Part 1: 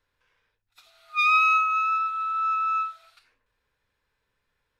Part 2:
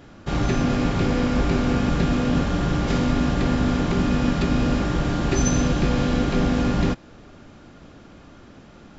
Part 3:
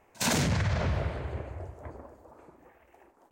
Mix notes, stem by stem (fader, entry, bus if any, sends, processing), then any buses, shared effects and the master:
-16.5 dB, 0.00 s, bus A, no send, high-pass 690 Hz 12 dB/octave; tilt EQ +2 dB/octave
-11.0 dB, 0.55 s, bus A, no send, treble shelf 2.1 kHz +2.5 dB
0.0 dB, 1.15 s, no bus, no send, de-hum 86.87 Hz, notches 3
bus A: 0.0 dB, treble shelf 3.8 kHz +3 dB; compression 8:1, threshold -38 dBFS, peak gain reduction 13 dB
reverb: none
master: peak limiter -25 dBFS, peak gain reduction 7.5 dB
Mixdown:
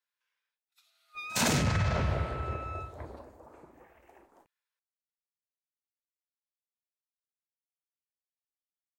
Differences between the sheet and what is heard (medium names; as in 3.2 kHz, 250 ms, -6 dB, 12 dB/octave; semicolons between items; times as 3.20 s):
stem 2: muted; master: missing peak limiter -25 dBFS, peak gain reduction 7.5 dB